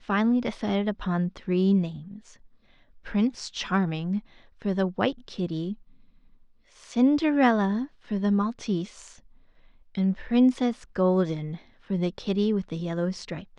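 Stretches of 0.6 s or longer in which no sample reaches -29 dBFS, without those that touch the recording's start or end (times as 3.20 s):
1.89–3.07 s
5.73–6.92 s
8.84–9.95 s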